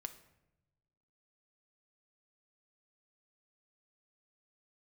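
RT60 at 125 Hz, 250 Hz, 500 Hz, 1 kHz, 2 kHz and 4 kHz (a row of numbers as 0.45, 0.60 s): 1.6, 1.5, 1.1, 0.80, 0.75, 0.60 s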